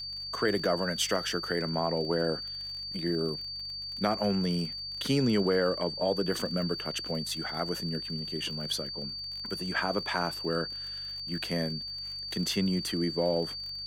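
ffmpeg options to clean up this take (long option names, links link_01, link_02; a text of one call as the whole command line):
ffmpeg -i in.wav -af "adeclick=threshold=4,bandreject=frequency=48.7:width_type=h:width=4,bandreject=frequency=97.4:width_type=h:width=4,bandreject=frequency=146.1:width_type=h:width=4,bandreject=frequency=4600:width=30" out.wav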